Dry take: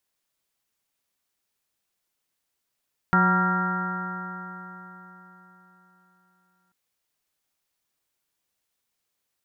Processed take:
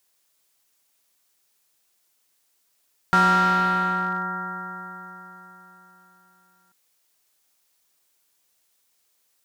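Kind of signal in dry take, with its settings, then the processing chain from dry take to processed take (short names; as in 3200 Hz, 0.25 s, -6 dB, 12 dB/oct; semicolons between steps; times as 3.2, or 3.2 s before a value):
stretched partials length 3.59 s, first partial 181 Hz, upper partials -11/-18.5/-9.5/-5/-12/2/-13/-13.5 dB, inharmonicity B 0.0039, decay 4.02 s, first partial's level -20 dB
tone controls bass -6 dB, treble +5 dB; in parallel at +2.5 dB: hard clip -28 dBFS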